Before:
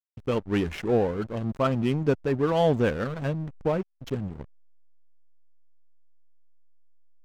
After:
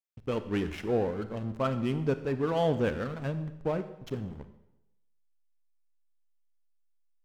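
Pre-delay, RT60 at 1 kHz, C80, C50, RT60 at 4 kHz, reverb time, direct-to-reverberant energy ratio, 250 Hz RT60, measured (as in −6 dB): 30 ms, 0.90 s, 14.5 dB, 12.5 dB, 0.80 s, 0.90 s, 10.5 dB, 0.85 s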